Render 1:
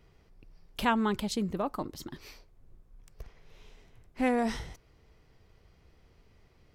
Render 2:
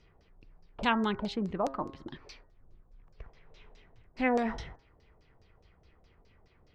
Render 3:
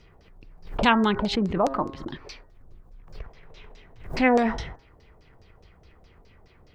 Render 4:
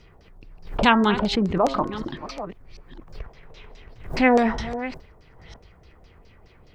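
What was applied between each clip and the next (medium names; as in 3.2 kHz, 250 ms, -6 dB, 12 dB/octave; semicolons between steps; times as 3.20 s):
LFO low-pass saw down 4.8 Hz 550–6200 Hz; de-hum 135 Hz, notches 14; trim -2 dB
swell ahead of each attack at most 110 dB/s; trim +8 dB
chunks repeated in reverse 506 ms, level -13 dB; trim +2.5 dB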